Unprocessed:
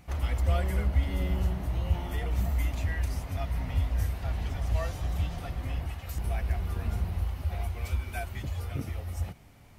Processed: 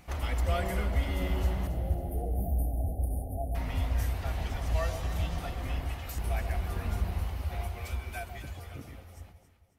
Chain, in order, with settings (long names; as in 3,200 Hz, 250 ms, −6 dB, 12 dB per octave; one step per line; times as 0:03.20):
fade-out on the ending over 2.57 s
parametric band 100 Hz −6 dB 2.4 octaves
floating-point word with a short mantissa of 8 bits
0:01.67–0:03.55: linear-phase brick-wall band-stop 840–8,900 Hz
on a send: delay that swaps between a low-pass and a high-pass 137 ms, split 940 Hz, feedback 62%, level −7 dB
on the sum: level +2 dB